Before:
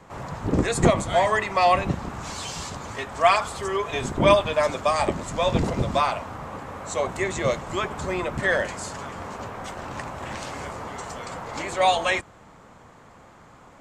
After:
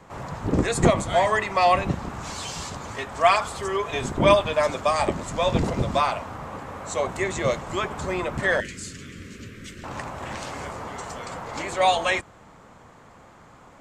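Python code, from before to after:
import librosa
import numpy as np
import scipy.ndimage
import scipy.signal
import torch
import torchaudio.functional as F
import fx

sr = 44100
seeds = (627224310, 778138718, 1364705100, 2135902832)

y = fx.cheby1_bandstop(x, sr, low_hz=320.0, high_hz=2100.0, order=2, at=(8.6, 9.84))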